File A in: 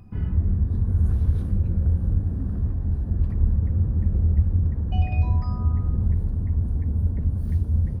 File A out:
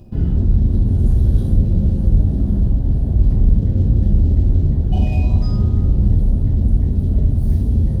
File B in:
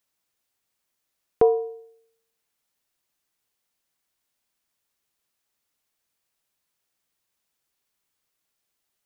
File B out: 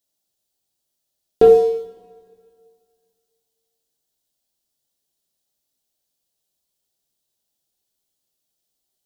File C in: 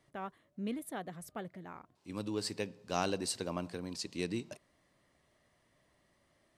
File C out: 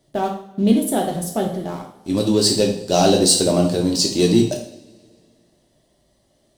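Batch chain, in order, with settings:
leveller curve on the samples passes 2
flat-topped bell 1,600 Hz −11.5 dB
coupled-rooms reverb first 0.52 s, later 2.2 s, from −22 dB, DRR −0.5 dB
normalise the peak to −2 dBFS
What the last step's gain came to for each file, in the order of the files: +1.0, +3.0, +12.5 decibels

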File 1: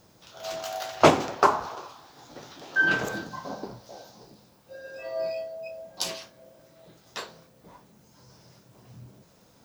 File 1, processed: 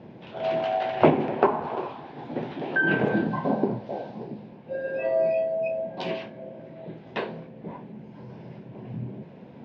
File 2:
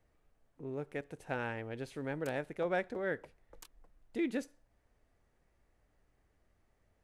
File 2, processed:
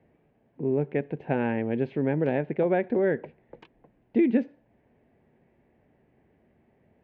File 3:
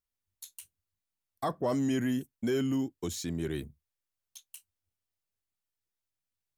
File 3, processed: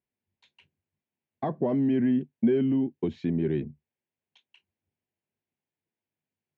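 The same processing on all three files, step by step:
parametric band 1,400 Hz −6 dB 0.27 octaves
downward compressor 2.5 to 1, threshold −34 dBFS
loudspeaker in its box 110–2,500 Hz, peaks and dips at 150 Hz +6 dB, 230 Hz +8 dB, 380 Hz +5 dB, 1,200 Hz −10 dB, 1,900 Hz −3 dB
loudness normalisation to −27 LKFS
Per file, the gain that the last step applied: +12.0, +11.5, +6.0 decibels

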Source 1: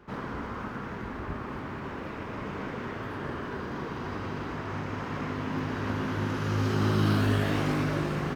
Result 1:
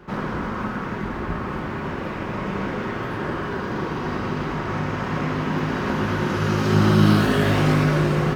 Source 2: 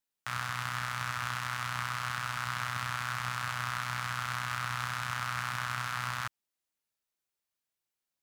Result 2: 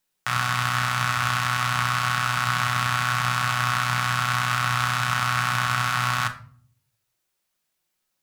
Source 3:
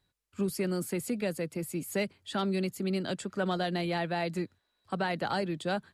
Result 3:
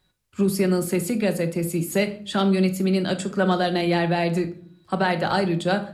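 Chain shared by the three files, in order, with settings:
rectangular room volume 560 cubic metres, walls furnished, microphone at 1 metre
loudness normalisation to −23 LKFS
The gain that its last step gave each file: +7.5, +10.5, +7.5 decibels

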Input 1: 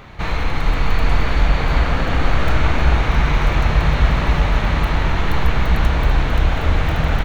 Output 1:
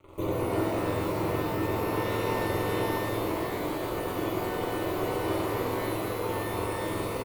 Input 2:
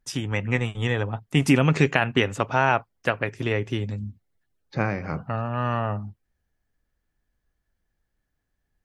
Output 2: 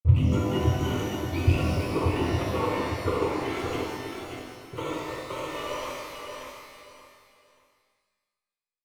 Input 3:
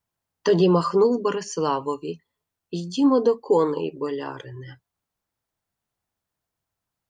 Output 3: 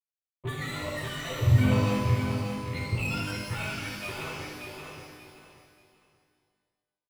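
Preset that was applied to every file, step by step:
frequency axis turned over on the octave scale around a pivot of 850 Hz
gate on every frequency bin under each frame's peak −20 dB strong
dynamic equaliser 130 Hz, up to −6 dB, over −39 dBFS, Q 0.77
speech leveller within 3 dB 0.5 s
brickwall limiter −18 dBFS
transient designer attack +3 dB, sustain −1 dB
tape wow and flutter 18 cents
RIAA equalisation playback
dead-zone distortion −30 dBFS
phaser with its sweep stopped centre 1,100 Hz, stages 8
repeating echo 581 ms, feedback 26%, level −6 dB
reverb with rising layers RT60 1.4 s, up +12 semitones, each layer −8 dB, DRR −4 dB
level −3 dB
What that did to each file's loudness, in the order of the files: −11.0, −3.5, −7.0 LU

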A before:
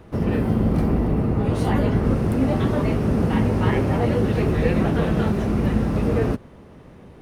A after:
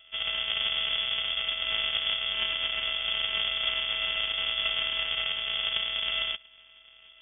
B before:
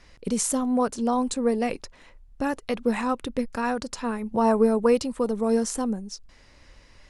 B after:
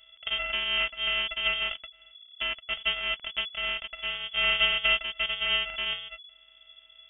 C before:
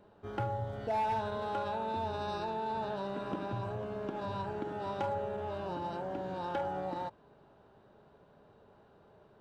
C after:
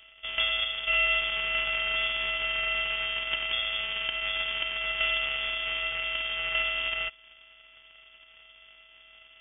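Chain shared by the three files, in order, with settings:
samples sorted by size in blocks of 64 samples
voice inversion scrambler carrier 3,400 Hz
loudness normalisation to −27 LKFS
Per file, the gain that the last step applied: −10.5, −4.5, +7.0 decibels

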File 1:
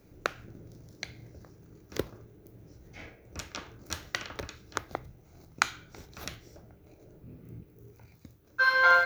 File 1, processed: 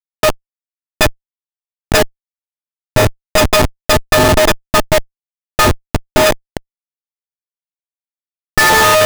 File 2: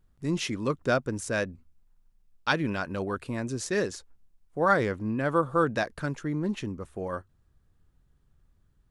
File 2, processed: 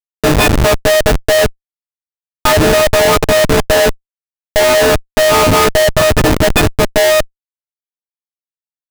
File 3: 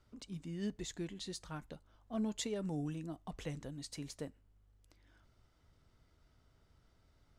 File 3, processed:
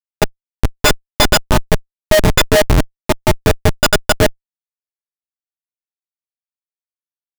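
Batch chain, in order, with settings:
every partial snapped to a pitch grid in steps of 6 semitones
treble cut that deepens with the level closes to 1,600 Hz, closed at −23 dBFS
high-pass with resonance 600 Hz, resonance Q 4.9
comparator with hysteresis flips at −32 dBFS
normalise the peak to −3 dBFS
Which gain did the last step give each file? +20.5, +13.0, +32.0 decibels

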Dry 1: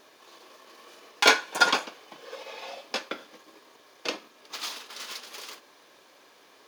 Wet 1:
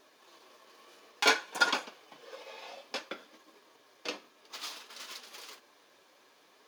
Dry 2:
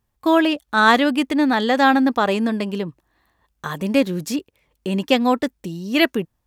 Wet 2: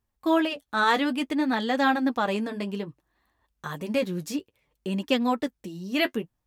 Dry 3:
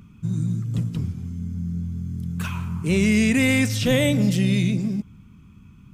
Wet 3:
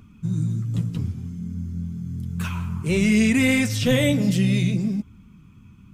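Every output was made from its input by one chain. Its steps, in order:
flanger 0.59 Hz, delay 2.7 ms, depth 8.9 ms, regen −38%
normalise the peak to −9 dBFS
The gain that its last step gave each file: −2.5, −3.5, +3.5 decibels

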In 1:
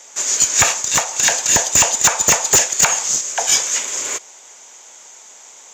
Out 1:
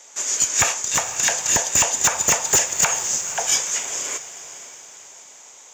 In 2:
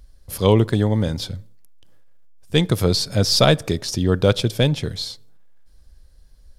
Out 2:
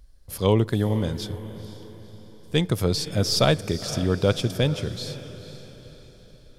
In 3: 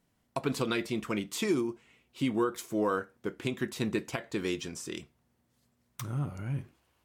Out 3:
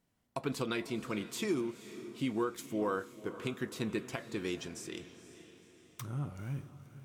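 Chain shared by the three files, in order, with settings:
dynamic equaliser 4,100 Hz, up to −5 dB, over −41 dBFS, Q 5.7
on a send: feedback delay with all-pass diffusion 495 ms, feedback 46%, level −13.5 dB
on the sum: level −4.5 dB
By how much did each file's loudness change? −4.5, −4.5, −4.5 LU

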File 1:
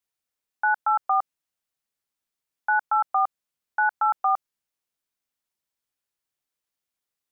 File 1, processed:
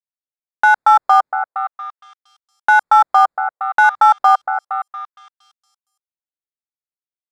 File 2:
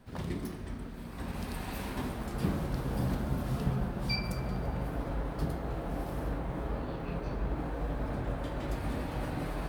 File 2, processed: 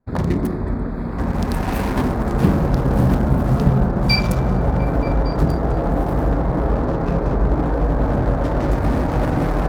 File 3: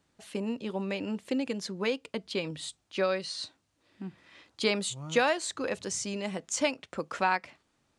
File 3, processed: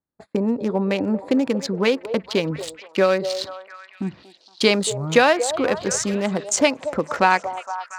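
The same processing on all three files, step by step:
adaptive Wiener filter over 15 samples
noise gate −54 dBFS, range −31 dB
in parallel at −3 dB: downward compressor, threshold −36 dBFS
on the sum: echo through a band-pass that steps 232 ms, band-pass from 580 Hz, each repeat 0.7 octaves, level −8 dB
normalise the peak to −2 dBFS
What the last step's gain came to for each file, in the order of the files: +10.5, +13.5, +9.5 decibels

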